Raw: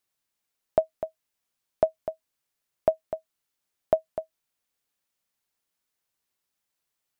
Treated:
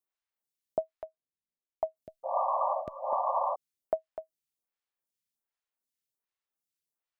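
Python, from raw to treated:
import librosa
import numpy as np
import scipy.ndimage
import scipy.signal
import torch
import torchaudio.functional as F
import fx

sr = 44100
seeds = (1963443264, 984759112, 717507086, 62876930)

y = fx.env_lowpass(x, sr, base_hz=420.0, full_db=-20.5, at=(1.04, 1.95), fade=0.02)
y = fx.spec_paint(y, sr, seeds[0], shape='noise', start_s=2.23, length_s=1.33, low_hz=520.0, high_hz=1200.0, level_db=-21.0)
y = fx.stagger_phaser(y, sr, hz=1.3)
y = y * librosa.db_to_amplitude(-7.0)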